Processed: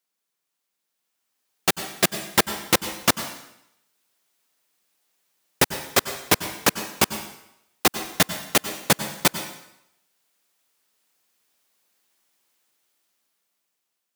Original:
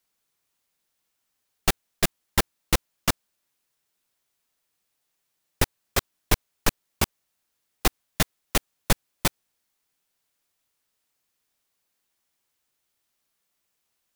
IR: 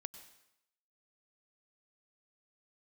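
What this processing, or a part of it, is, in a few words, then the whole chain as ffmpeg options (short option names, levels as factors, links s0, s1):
far laptop microphone: -filter_complex "[1:a]atrim=start_sample=2205[s0];[0:a][s0]afir=irnorm=-1:irlink=0,highpass=180,dynaudnorm=f=420:g=7:m=3.76"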